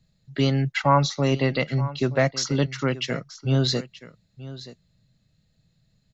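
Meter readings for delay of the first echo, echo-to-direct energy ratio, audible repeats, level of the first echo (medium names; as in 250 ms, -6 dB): 927 ms, -16.5 dB, 1, -16.5 dB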